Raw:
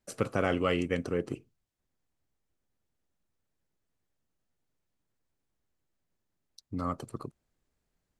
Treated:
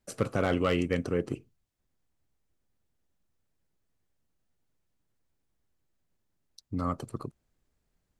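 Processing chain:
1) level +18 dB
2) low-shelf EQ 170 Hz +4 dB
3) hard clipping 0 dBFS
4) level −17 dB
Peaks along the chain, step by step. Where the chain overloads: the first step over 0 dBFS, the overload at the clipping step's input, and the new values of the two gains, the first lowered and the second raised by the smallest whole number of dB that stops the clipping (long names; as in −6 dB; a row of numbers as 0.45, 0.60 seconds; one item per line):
+5.5, +6.5, 0.0, −17.0 dBFS
step 1, 6.5 dB
step 1 +11 dB, step 4 −10 dB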